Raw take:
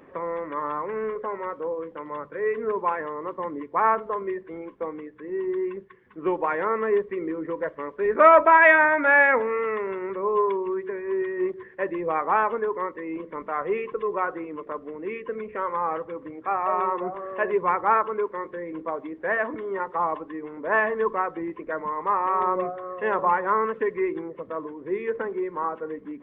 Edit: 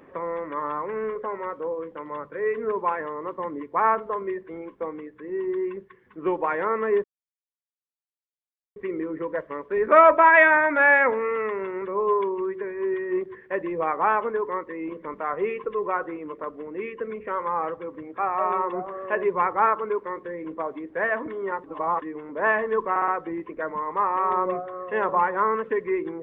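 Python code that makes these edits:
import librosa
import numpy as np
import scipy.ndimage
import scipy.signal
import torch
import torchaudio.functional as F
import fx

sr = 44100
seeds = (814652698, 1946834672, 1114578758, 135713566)

y = fx.edit(x, sr, fx.insert_silence(at_s=7.04, length_s=1.72),
    fx.reverse_span(start_s=19.92, length_s=0.38),
    fx.stutter(start_s=21.18, slice_s=0.06, count=4), tone=tone)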